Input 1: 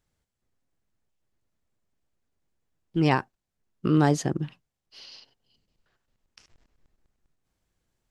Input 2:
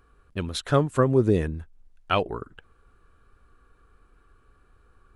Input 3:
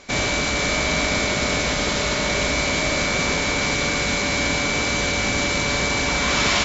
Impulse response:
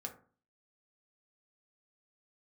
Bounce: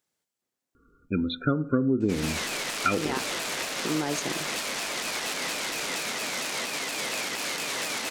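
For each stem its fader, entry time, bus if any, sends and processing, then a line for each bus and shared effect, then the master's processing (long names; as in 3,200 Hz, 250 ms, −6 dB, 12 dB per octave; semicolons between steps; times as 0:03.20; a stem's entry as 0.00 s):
−2.5 dB, 0.00 s, bus A, no send, high-shelf EQ 3,800 Hz +7 dB
−10.5 dB, 0.75 s, no bus, send −3.5 dB, adaptive Wiener filter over 15 samples; hollow resonant body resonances 260/1,400/2,400/3,500 Hz, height 17 dB, ringing for 20 ms; spectral peaks only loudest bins 32
−8.0 dB, 2.00 s, bus A, no send, harmonic generator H 7 −8 dB, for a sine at −5.5 dBFS; pitch modulation by a square or saw wave saw down 4.3 Hz, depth 250 cents
bus A: 0.0 dB, high-pass filter 240 Hz 12 dB per octave; brickwall limiter −18 dBFS, peak gain reduction 8.5 dB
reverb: on, RT60 0.40 s, pre-delay 3 ms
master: downward compressor 10 to 1, threshold −20 dBFS, peak gain reduction 10.5 dB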